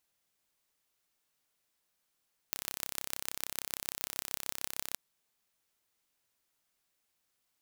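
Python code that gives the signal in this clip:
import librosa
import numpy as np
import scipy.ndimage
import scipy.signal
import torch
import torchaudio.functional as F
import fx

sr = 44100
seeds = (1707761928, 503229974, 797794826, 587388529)

y = fx.impulse_train(sr, length_s=2.42, per_s=33.1, accent_every=5, level_db=-5.0)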